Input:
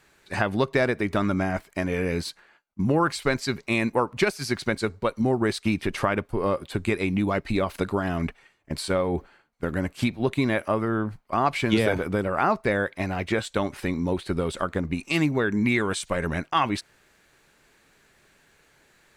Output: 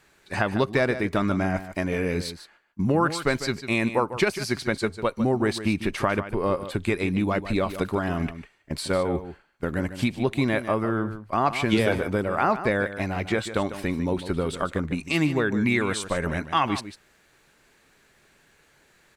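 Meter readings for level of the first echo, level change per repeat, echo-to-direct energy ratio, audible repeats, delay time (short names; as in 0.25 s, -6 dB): -12.0 dB, no steady repeat, -12.0 dB, 1, 0.149 s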